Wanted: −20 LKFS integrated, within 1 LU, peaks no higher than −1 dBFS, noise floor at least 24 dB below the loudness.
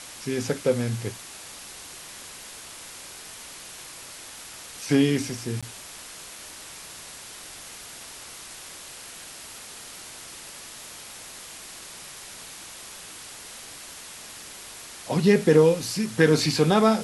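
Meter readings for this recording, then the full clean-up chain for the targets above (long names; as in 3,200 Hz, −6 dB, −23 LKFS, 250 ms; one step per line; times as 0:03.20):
number of dropouts 1; longest dropout 16 ms; background noise floor −42 dBFS; target noise floor −47 dBFS; integrated loudness −22.5 LKFS; sample peak −5.5 dBFS; target loudness −20.0 LKFS
→ repair the gap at 0:05.61, 16 ms
broadband denoise 6 dB, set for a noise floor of −42 dBFS
level +2.5 dB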